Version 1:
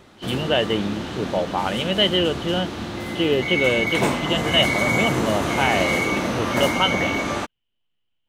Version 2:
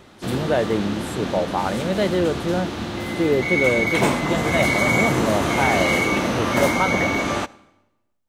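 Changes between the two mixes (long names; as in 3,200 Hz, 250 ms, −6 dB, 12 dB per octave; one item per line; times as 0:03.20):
speech: remove low-pass with resonance 3,000 Hz, resonance Q 15
reverb: on, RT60 1.0 s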